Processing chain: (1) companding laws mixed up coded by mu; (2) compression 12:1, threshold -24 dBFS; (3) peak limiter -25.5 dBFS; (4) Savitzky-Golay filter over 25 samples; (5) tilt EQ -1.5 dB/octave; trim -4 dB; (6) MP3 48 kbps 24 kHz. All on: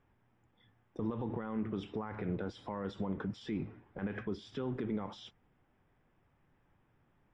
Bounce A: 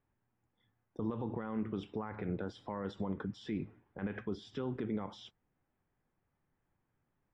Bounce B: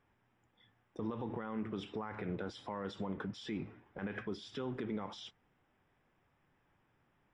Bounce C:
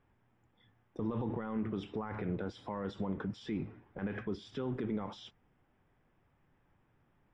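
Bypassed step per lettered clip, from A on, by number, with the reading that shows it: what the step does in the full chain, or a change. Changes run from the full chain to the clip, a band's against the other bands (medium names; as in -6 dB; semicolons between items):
1, distortion -23 dB; 5, 4 kHz band +4.5 dB; 2, mean gain reduction 2.0 dB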